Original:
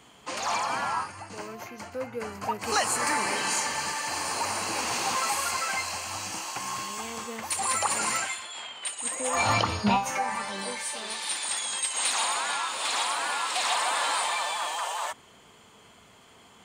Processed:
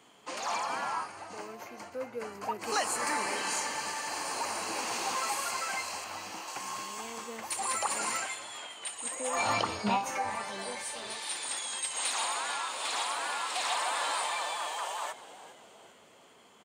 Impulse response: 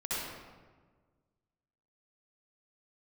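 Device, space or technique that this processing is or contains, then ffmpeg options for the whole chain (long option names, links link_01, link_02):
filter by subtraction: -filter_complex "[0:a]asettb=1/sr,asplit=3[link_01][link_02][link_03];[link_01]atrim=end=6.044[link_04];[link_02]atrim=start=6.04:end=6.48,asetpts=PTS-STARTPTS,afade=type=in:duration=0.004:curve=qsin,afade=type=out:start_time=0.436:duration=0.004:curve=qsin,equalizer=frequency=8600:width_type=o:width=1.2:gain=-8.5[link_05];[link_03]atrim=start=6.476[link_06];[link_04][link_05]acrossfade=duration=0.004:curve1=hsin:curve2=qsin[link_07];[link_07][link_06]acrossfade=duration=0.004:curve1=qsin:curve2=hsin,asplit=5[link_08][link_09][link_10][link_11][link_12];[link_09]adelay=401,afreqshift=-110,volume=-16dB[link_13];[link_10]adelay=802,afreqshift=-220,volume=-22dB[link_14];[link_11]adelay=1203,afreqshift=-330,volume=-28dB[link_15];[link_12]adelay=1604,afreqshift=-440,volume=-34.1dB[link_16];[link_08][link_13][link_14][link_15][link_16]amix=inputs=5:normalize=0,asplit=2[link_17][link_18];[link_18]lowpass=360,volume=-1[link_19];[link_17][link_19]amix=inputs=2:normalize=0,volume=-5.5dB"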